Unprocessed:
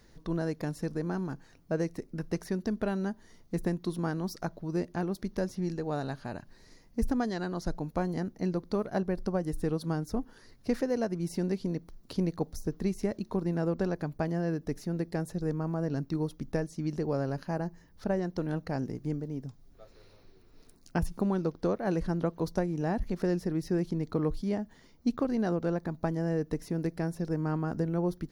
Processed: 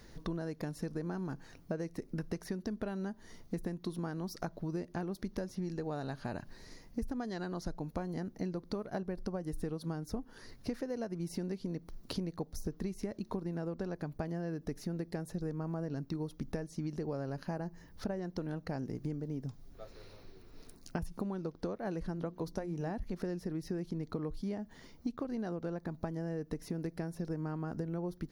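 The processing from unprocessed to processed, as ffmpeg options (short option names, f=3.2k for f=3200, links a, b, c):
-filter_complex "[0:a]asettb=1/sr,asplit=3[a][b][c];[a]atrim=end=22.154[d];[b]atrim=start=22.15:end=22.91,asetpts=PTS-STARTPTS,afade=t=in:d=0.004:c=qsin,afade=t=out:st=0.756:d=0.004:c=qsin,bandreject=f=60:t=h:w=6,bandreject=f=120:t=h:w=6,bandreject=f=180:t=h:w=6,bandreject=f=240:t=h:w=6,bandreject=f=300:t=h:w=6,bandreject=f=360:t=h:w=6[e];[c]atrim=start=22.906[f];[d][e]acrossfade=d=0.004:c1=hsin:c2=qsin[g];[g][f]acrossfade=d=0.004:c1=qsin:c2=hsin,equalizer=f=7.6k:w=5.6:g=-3,acompressor=threshold=-38dB:ratio=10,volume=4dB"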